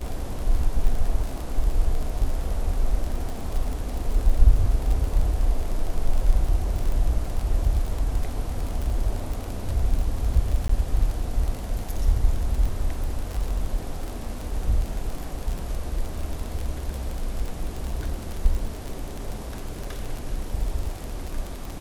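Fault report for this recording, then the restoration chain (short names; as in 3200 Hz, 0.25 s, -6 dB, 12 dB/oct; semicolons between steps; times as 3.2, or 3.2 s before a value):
crackle 28/s -26 dBFS
10.68–10.69 gap 14 ms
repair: de-click; interpolate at 10.68, 14 ms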